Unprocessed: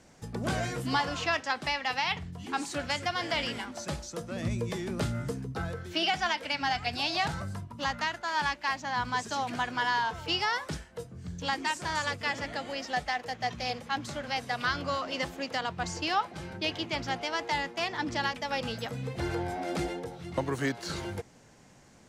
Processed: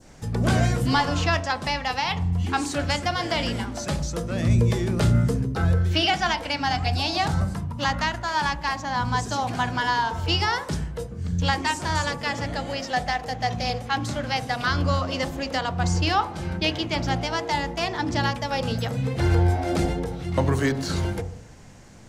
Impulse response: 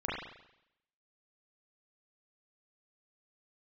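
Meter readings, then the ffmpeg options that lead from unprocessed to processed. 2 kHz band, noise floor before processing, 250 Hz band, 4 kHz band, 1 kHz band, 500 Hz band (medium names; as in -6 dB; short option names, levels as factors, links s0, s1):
+4.0 dB, -56 dBFS, +9.5 dB, +5.0 dB, +6.0 dB, +7.0 dB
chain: -filter_complex "[0:a]bandreject=f=60.62:t=h:w=4,bandreject=f=121.24:t=h:w=4,bandreject=f=181.86:t=h:w=4,bandreject=f=242.48:t=h:w=4,bandreject=f=303.1:t=h:w=4,bandreject=f=363.72:t=h:w=4,bandreject=f=424.34:t=h:w=4,bandreject=f=484.96:t=h:w=4,bandreject=f=545.58:t=h:w=4,bandreject=f=606.2:t=h:w=4,bandreject=f=666.82:t=h:w=4,bandreject=f=727.44:t=h:w=4,bandreject=f=788.06:t=h:w=4,bandreject=f=848.68:t=h:w=4,bandreject=f=909.3:t=h:w=4,bandreject=f=969.92:t=h:w=4,bandreject=f=1030.54:t=h:w=4,bandreject=f=1091.16:t=h:w=4,bandreject=f=1151.78:t=h:w=4,bandreject=f=1212.4:t=h:w=4,asplit=2[s0][s1];[s1]aemphasis=mode=reproduction:type=riaa[s2];[1:a]atrim=start_sample=2205,lowshelf=f=470:g=9.5[s3];[s2][s3]afir=irnorm=-1:irlink=0,volume=0.0668[s4];[s0][s4]amix=inputs=2:normalize=0,adynamicequalizer=threshold=0.00708:dfrequency=2200:dqfactor=0.81:tfrequency=2200:tqfactor=0.81:attack=5:release=100:ratio=0.375:range=3:mode=cutabove:tftype=bell,volume=2.24"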